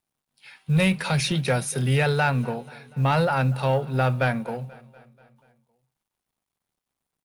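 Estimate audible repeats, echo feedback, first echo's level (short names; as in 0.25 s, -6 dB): 3, 59%, -21.5 dB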